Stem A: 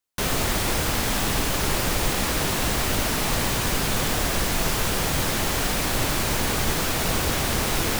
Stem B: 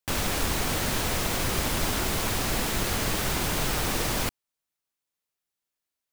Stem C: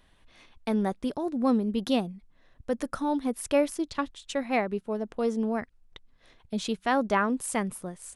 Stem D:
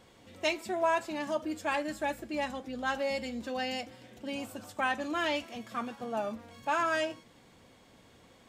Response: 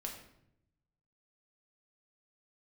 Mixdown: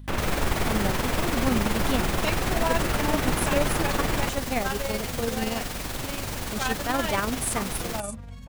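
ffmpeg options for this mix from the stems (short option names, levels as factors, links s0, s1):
-filter_complex "[0:a]volume=0.447[s0];[1:a]acrossover=split=2800[s1][s2];[s2]acompressor=threshold=0.00631:ratio=4:attack=1:release=60[s3];[s1][s3]amix=inputs=2:normalize=0,volume=1.19,asplit=2[s4][s5];[s5]volume=0.473[s6];[2:a]highshelf=f=5700:g=11.5,volume=0.891[s7];[3:a]asubboost=boost=10:cutoff=97,adelay=1800,volume=1.33[s8];[4:a]atrim=start_sample=2205[s9];[s6][s9]afir=irnorm=-1:irlink=0[s10];[s0][s4][s7][s8][s10]amix=inputs=5:normalize=0,tremolo=f=21:d=0.462,aeval=exprs='val(0)+0.01*(sin(2*PI*50*n/s)+sin(2*PI*2*50*n/s)/2+sin(2*PI*3*50*n/s)/3+sin(2*PI*4*50*n/s)/4+sin(2*PI*5*50*n/s)/5)':c=same"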